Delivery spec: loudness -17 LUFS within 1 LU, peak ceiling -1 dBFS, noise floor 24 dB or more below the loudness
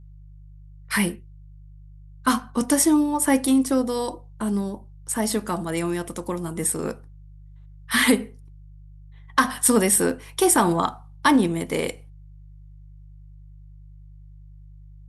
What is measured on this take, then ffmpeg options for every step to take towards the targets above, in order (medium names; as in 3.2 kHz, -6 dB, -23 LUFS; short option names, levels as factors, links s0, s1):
hum 50 Hz; highest harmonic 150 Hz; hum level -42 dBFS; loudness -22.5 LUFS; peak level -2.0 dBFS; loudness target -17.0 LUFS
-> -af "bandreject=f=50:t=h:w=4,bandreject=f=100:t=h:w=4,bandreject=f=150:t=h:w=4"
-af "volume=1.88,alimiter=limit=0.891:level=0:latency=1"